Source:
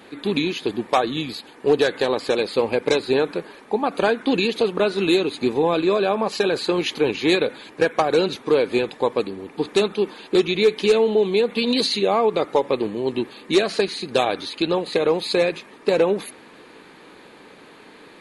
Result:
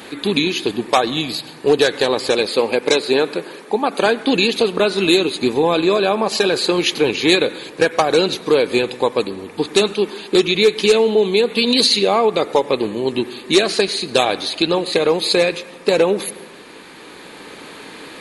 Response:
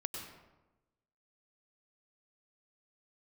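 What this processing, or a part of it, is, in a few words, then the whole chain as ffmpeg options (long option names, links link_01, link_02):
ducked reverb: -filter_complex "[0:a]asplit=3[link_01][link_02][link_03];[1:a]atrim=start_sample=2205[link_04];[link_02][link_04]afir=irnorm=-1:irlink=0[link_05];[link_03]apad=whole_len=802820[link_06];[link_05][link_06]sidechaincompress=threshold=-38dB:ratio=3:attack=16:release=946,volume=2dB[link_07];[link_01][link_07]amix=inputs=2:normalize=0,asettb=1/sr,asplit=3[link_08][link_09][link_10];[link_08]atrim=end=2.484[link_11];[link_09]atrim=start=2.48:end=4.06,asetpts=PTS-STARTPTS,afade=type=in:duration=0.004:curve=qsin,afade=type=out:start_time=1.576:duration=0.004:curve=qsin,highpass=170[link_12];[link_10]atrim=start=4.056[link_13];[link_11][link_12]acrossfade=duration=0.004:curve1=hsin:curve2=qsin[link_14];[link_14][link_13]acrossfade=duration=0.004:curve1=qsin:curve2=hsin,highshelf=frequency=3400:gain=8.5,volume=2dB"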